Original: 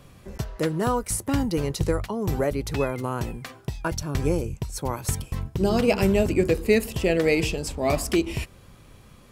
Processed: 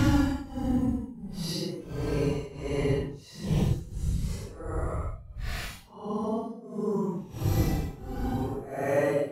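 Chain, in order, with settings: granulator 84 ms, grains 12 per s, spray 34 ms, pitch spread up and down by 0 st; Paulstretch 8.2×, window 0.05 s, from 1.36 s

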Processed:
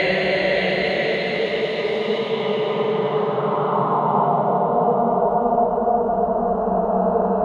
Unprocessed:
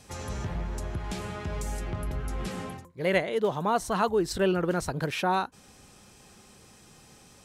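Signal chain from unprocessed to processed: Paulstretch 8.9×, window 0.50 s, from 3.15 s; low-pass sweep 4.4 kHz -> 610 Hz, 2.10–4.64 s; echo that smears into a reverb 583 ms, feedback 43%, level -8.5 dB; trim +5 dB

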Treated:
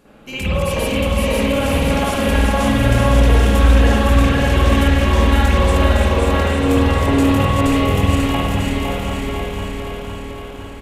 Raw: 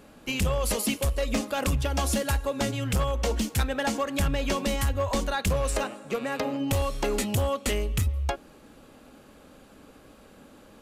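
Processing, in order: backward echo that repeats 255 ms, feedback 78%, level -3.5 dB; bouncing-ball echo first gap 540 ms, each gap 0.75×, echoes 5; spring tank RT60 1.2 s, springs 51 ms, chirp 60 ms, DRR -9.5 dB; trim -3 dB

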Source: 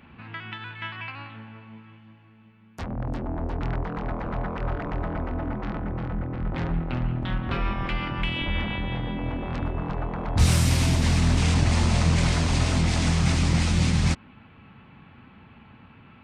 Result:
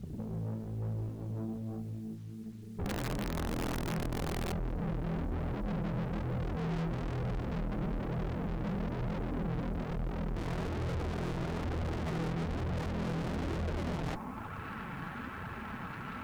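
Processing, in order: low-pass sweep 180 Hz -> 1.6 kHz, 12.93–14.64 s; in parallel at -6.5 dB: sine folder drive 16 dB, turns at -4.5 dBFS; on the sum: valve stage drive 30 dB, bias 0.7; word length cut 10-bit, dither none; flange 1.1 Hz, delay 1.3 ms, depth 5.5 ms, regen -35%; 2.83–4.53 s: integer overflow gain 30 dB

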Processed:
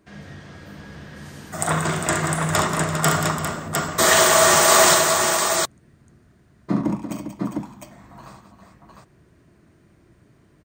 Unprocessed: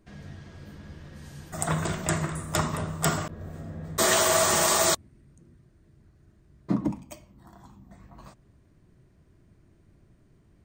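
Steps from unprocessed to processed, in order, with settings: high-pass 150 Hz 6 dB/octave; peaking EQ 1.5 kHz +3 dB 1.5 oct; multi-tap echo 40/69/183/339/402/706 ms -8.5/-6.5/-9.5/-13.5/-9.5/-3.5 dB; trim +4.5 dB

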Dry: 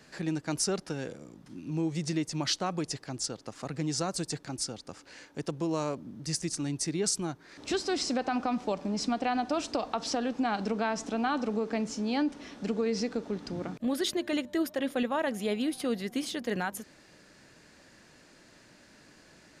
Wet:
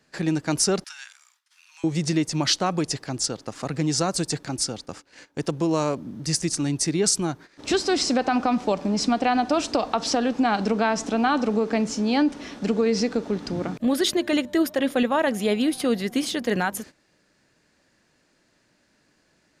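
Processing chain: gate -48 dBFS, range -16 dB; 0.84–1.84 s: Bessel high-pass 1.9 kHz, order 8; trim +8 dB

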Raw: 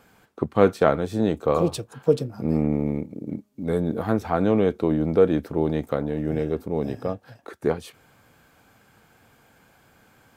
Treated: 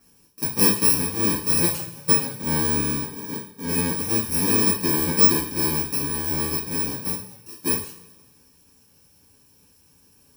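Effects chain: bit-reversed sample order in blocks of 64 samples; two-slope reverb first 0.41 s, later 1.5 s, from -19 dB, DRR -9 dB; trim -10 dB

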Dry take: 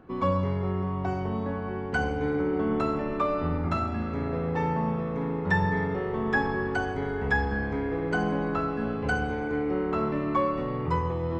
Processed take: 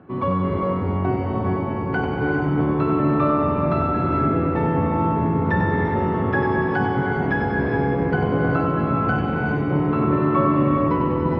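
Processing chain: octave divider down 1 oct, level +3 dB; in parallel at +1.5 dB: peak limiter -19 dBFS, peak gain reduction 9 dB; on the sum: band-pass 130–4300 Hz; distance through air 180 m; on a send: two-band feedback delay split 480 Hz, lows 590 ms, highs 95 ms, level -6 dB; on the sum: gated-style reverb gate 440 ms rising, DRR 1.5 dB; trim -2 dB

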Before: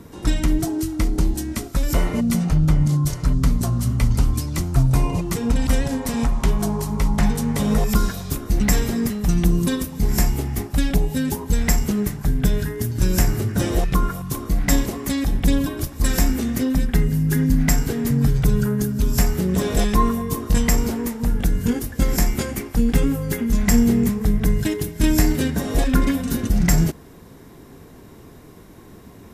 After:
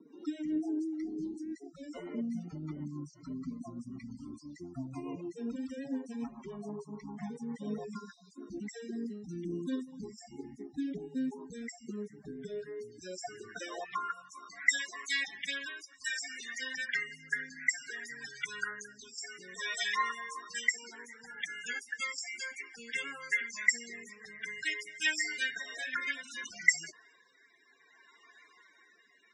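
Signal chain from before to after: frequency weighting ITU-R 468; loudest bins only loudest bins 32; rotary cabinet horn 7 Hz, later 0.6 Hz, at 8.05 s; band-pass sweep 290 Hz -> 1.8 kHz, 11.96–14.68 s; trim +3 dB

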